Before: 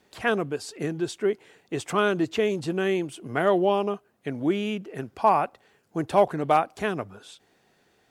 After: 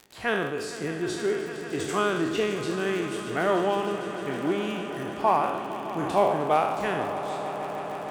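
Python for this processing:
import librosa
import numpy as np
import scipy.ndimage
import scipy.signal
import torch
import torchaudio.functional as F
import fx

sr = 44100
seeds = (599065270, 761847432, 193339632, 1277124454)

y = fx.spec_trails(x, sr, decay_s=0.85)
y = fx.echo_swell(y, sr, ms=153, loudest=5, wet_db=-15)
y = fx.dmg_crackle(y, sr, seeds[0], per_s=52.0, level_db=-30.0)
y = y * 10.0 ** (-4.0 / 20.0)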